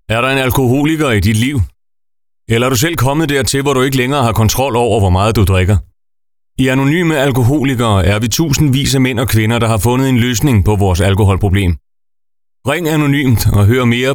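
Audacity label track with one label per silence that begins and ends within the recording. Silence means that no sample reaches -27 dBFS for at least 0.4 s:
1.670000	2.490000	silence
5.820000	6.580000	silence
11.770000	12.650000	silence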